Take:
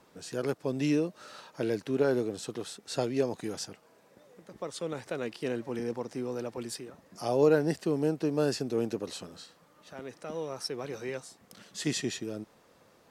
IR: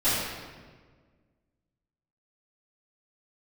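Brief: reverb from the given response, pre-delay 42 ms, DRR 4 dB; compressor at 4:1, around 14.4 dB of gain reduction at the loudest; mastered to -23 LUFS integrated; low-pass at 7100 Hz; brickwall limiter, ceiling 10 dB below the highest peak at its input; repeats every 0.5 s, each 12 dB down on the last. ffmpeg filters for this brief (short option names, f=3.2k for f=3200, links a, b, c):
-filter_complex "[0:a]lowpass=7.1k,acompressor=threshold=-36dB:ratio=4,alimiter=level_in=9.5dB:limit=-24dB:level=0:latency=1,volume=-9.5dB,aecho=1:1:500|1000|1500:0.251|0.0628|0.0157,asplit=2[a][b];[1:a]atrim=start_sample=2205,adelay=42[c];[b][c]afir=irnorm=-1:irlink=0,volume=-18.5dB[d];[a][d]amix=inputs=2:normalize=0,volume=19.5dB"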